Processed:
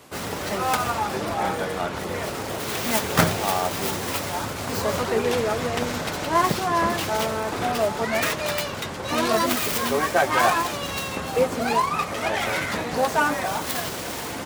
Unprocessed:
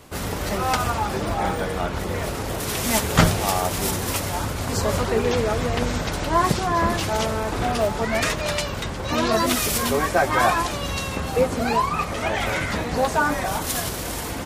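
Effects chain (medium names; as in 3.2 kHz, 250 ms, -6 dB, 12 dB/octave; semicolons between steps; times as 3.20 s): tracing distortion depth 0.28 ms; high-pass 92 Hz 12 dB/octave; bass shelf 200 Hz -6 dB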